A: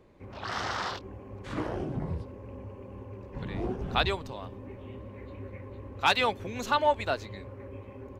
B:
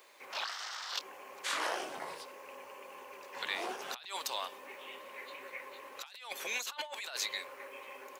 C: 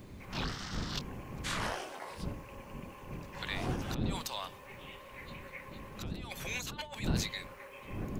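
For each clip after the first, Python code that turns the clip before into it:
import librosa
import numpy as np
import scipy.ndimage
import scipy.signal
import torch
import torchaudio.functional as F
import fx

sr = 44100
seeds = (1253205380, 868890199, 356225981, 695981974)

y1 = scipy.signal.sosfilt(scipy.signal.butter(2, 630.0, 'highpass', fs=sr, output='sos'), x)
y1 = fx.tilt_eq(y1, sr, slope=4.5)
y1 = fx.over_compress(y1, sr, threshold_db=-39.0, ratio=-1.0)
y1 = y1 * 10.0 ** (-2.0 / 20.0)
y2 = fx.dmg_wind(y1, sr, seeds[0], corner_hz=210.0, level_db=-39.0)
y2 = y2 * 10.0 ** (-2.0 / 20.0)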